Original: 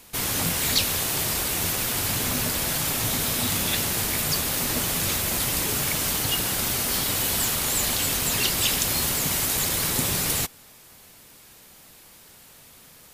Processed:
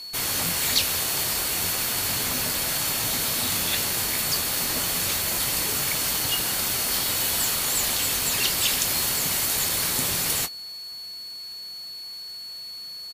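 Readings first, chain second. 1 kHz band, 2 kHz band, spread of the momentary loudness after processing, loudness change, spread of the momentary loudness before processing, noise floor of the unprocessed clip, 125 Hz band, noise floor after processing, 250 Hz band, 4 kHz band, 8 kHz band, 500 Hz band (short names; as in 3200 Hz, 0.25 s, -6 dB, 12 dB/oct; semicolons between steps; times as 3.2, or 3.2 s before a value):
-1.0 dB, 0.0 dB, 13 LU, +0.5 dB, 2 LU, -50 dBFS, -6.0 dB, -38 dBFS, -4.5 dB, +1.5 dB, +0.5 dB, -2.5 dB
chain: low shelf 440 Hz -6.5 dB; whine 4400 Hz -36 dBFS; doubler 23 ms -11.5 dB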